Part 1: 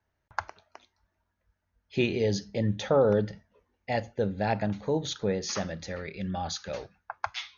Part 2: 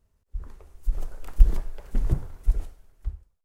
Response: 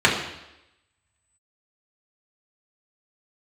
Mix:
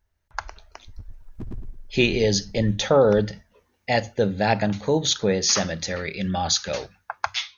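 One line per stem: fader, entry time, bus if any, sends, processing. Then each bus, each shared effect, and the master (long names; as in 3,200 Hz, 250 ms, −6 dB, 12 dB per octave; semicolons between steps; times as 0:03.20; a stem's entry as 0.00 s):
−4.0 dB, 0.00 s, no send, no echo send, automatic gain control gain up to 11 dB; mains-hum notches 50/100 Hz
−3.0 dB, 0.00 s, no send, echo send −7 dB, expanding power law on the bin magnitudes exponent 1.6; wave folding −18.5 dBFS; automatic ducking −15 dB, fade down 0.55 s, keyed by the first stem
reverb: not used
echo: repeating echo 109 ms, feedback 29%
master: high-shelf EQ 2,800 Hz +9.5 dB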